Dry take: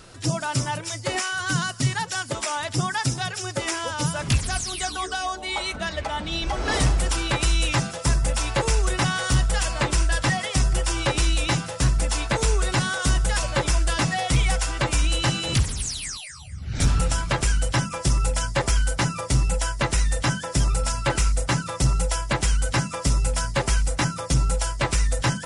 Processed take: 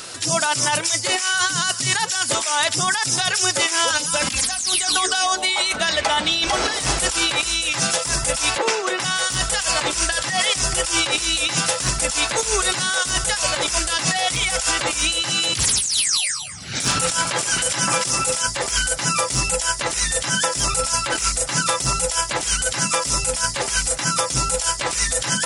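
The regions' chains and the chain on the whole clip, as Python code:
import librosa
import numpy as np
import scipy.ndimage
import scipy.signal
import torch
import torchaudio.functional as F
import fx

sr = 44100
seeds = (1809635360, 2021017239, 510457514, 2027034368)

y = fx.chain(x, sr, fx.comb(ms=3.8, depth=0.83),
    fx.band_squash(depth_pct=40), at=(3.9, 4.66))
y = fx.chain(y, sr, fx.highpass(hz=240.0, slope=24),
    fx.spacing_loss(db_at_10k=22), at=(8.58, 9.0))
y = fx.chain(y, sr, fx.highpass(hz=120.0, slope=12),
    fx.echo_alternate(ms=136, hz=1600.0, feedback_pct=52, wet_db=-9), at=(16.33, 18.47))
y = fx.highpass(y, sr, hz=380.0, slope=6)
y = fx.high_shelf(y, sr, hz=2700.0, db=9.5)
y = fx.over_compress(y, sr, threshold_db=-27.0, ratio=-1.0)
y = y * 10.0 ** (6.0 / 20.0)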